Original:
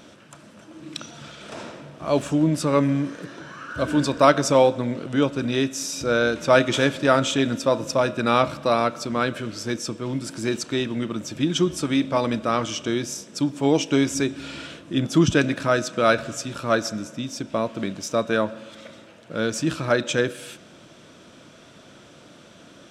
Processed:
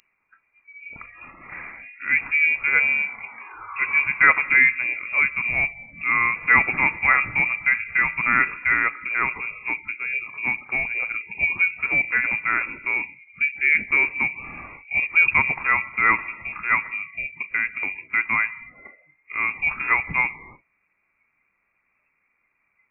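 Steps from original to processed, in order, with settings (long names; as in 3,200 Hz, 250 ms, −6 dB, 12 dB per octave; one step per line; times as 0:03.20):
voice inversion scrambler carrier 2,600 Hz
noise reduction from a noise print of the clip's start 22 dB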